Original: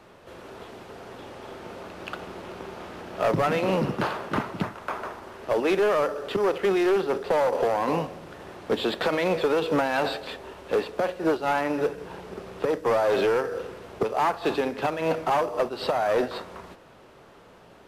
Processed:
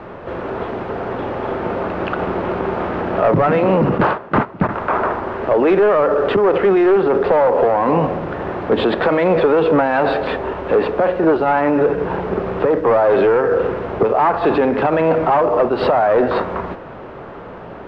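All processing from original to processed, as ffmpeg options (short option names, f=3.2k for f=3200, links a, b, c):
-filter_complex "[0:a]asettb=1/sr,asplit=3[a][b][c];[a]atrim=end=3.984[d];[b]atrim=start=3.98:end=4.69,asetpts=PTS-STARTPTS,afade=t=in:d=0.004:c=qsin,afade=t=out:st=0.706:d=0.004:c=qsin,agate=range=-17dB:threshold=-31dB:ratio=16:release=100:detection=peak,asoftclip=type=hard:threshold=-21.5dB[e];[c]atrim=start=4.686[f];[d][e]acrossfade=d=0.004:c1=hsin:c2=qsin[g];[g][f]acrossfade=d=0.004:c1=qsin:c2=hsin,lowpass=1.7k,alimiter=level_in=25.5dB:limit=-1dB:release=50:level=0:latency=1,volume=-7dB"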